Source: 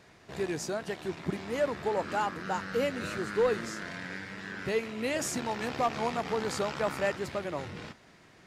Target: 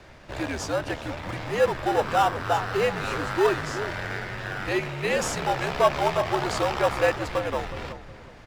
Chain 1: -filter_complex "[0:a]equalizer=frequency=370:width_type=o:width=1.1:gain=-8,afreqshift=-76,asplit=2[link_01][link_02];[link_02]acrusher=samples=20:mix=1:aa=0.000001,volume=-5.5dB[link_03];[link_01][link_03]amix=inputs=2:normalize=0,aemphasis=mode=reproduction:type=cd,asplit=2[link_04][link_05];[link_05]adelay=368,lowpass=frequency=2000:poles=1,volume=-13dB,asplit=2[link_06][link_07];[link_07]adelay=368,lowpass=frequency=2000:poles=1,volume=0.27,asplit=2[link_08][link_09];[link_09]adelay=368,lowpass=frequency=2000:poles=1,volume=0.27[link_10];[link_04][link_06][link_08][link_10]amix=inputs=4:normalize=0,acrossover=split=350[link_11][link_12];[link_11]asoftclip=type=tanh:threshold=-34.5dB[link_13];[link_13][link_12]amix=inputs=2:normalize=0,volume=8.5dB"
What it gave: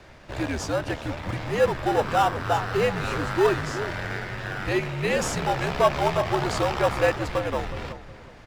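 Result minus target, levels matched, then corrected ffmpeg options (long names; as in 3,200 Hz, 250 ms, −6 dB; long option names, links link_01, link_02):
soft clipping: distortion −5 dB
-filter_complex "[0:a]equalizer=frequency=370:width_type=o:width=1.1:gain=-8,afreqshift=-76,asplit=2[link_01][link_02];[link_02]acrusher=samples=20:mix=1:aa=0.000001,volume=-5.5dB[link_03];[link_01][link_03]amix=inputs=2:normalize=0,aemphasis=mode=reproduction:type=cd,asplit=2[link_04][link_05];[link_05]adelay=368,lowpass=frequency=2000:poles=1,volume=-13dB,asplit=2[link_06][link_07];[link_07]adelay=368,lowpass=frequency=2000:poles=1,volume=0.27,asplit=2[link_08][link_09];[link_09]adelay=368,lowpass=frequency=2000:poles=1,volume=0.27[link_10];[link_04][link_06][link_08][link_10]amix=inputs=4:normalize=0,acrossover=split=350[link_11][link_12];[link_11]asoftclip=type=tanh:threshold=-42dB[link_13];[link_13][link_12]amix=inputs=2:normalize=0,volume=8.5dB"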